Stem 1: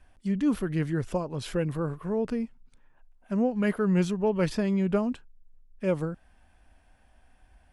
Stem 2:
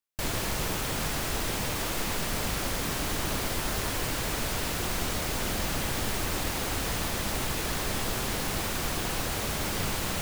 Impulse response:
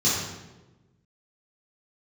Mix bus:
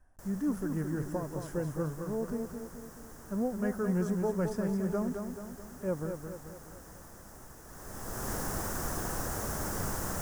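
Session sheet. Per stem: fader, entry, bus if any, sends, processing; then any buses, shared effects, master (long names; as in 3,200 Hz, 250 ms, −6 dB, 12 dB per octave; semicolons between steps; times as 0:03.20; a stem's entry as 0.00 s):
−6.5 dB, 0.00 s, no send, echo send −6.5 dB, no processing
−3.5 dB, 0.00 s, no send, no echo send, automatic ducking −16 dB, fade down 0.20 s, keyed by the first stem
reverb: not used
echo: repeating echo 216 ms, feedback 52%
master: flat-topped bell 3,100 Hz −15.5 dB 1.3 octaves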